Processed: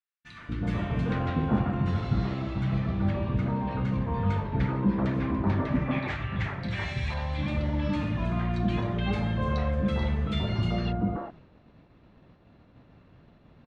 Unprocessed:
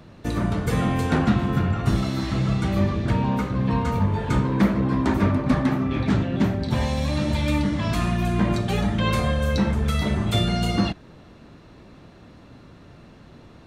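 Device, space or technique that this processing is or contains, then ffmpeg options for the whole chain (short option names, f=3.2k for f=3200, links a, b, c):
hearing-loss simulation: -filter_complex "[0:a]asettb=1/sr,asplit=3[a][b][c];[a]atrim=end=5.754[d];[b]atrim=start=5.75:end=7.14,asetpts=PTS-STARTPTS,afade=t=in:d=0.004:c=qsin,afade=t=out:st=1.386:d=0.004:c=qsin,equalizer=f=250:t=o:w=1:g=-12,equalizer=f=500:t=o:w=1:g=-4,equalizer=f=2k:t=o:w=1:g=10,equalizer=f=8k:t=o:w=1:g=8[e];[c]atrim=start=7.136[f];[d][e]acrossfade=d=0.004:c1=hsin:c2=qsin[g];[g][f]acrossfade=d=0.004:c1=qsin:c2=hsin,lowpass=2.9k,acrossover=split=340|1400[h][i][j];[h]adelay=240[k];[i]adelay=380[l];[k][l][j]amix=inputs=3:normalize=0,agate=range=-33dB:threshold=-43dB:ratio=3:detection=peak,volume=-4.5dB"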